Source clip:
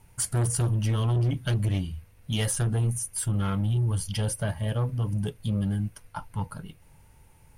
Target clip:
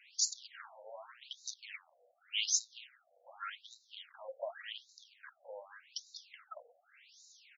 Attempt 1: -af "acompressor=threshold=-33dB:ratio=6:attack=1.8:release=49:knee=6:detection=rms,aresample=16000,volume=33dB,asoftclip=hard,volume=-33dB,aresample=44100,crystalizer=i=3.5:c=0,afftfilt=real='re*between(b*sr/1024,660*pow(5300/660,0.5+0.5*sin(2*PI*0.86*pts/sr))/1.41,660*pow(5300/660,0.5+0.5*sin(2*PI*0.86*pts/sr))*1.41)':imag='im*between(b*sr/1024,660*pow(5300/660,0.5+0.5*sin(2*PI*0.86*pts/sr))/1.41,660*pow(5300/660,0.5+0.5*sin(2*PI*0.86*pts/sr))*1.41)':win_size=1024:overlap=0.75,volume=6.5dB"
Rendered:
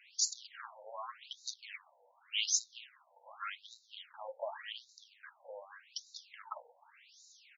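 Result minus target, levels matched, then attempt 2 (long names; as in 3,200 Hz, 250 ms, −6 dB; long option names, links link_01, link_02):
1,000 Hz band +5.0 dB
-af "acompressor=threshold=-33dB:ratio=6:attack=1.8:release=49:knee=6:detection=rms,asuperstop=centerf=980:order=8:qfactor=1.8,aresample=16000,volume=33dB,asoftclip=hard,volume=-33dB,aresample=44100,crystalizer=i=3.5:c=0,afftfilt=real='re*between(b*sr/1024,660*pow(5300/660,0.5+0.5*sin(2*PI*0.86*pts/sr))/1.41,660*pow(5300/660,0.5+0.5*sin(2*PI*0.86*pts/sr))*1.41)':imag='im*between(b*sr/1024,660*pow(5300/660,0.5+0.5*sin(2*PI*0.86*pts/sr))/1.41,660*pow(5300/660,0.5+0.5*sin(2*PI*0.86*pts/sr))*1.41)':win_size=1024:overlap=0.75,volume=6.5dB"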